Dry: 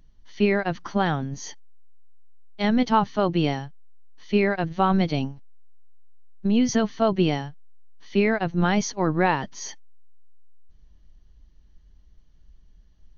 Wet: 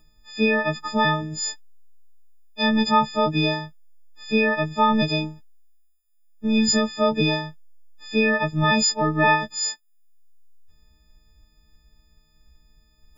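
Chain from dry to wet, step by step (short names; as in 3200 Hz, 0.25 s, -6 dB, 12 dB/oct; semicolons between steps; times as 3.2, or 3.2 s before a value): frequency quantiser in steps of 6 st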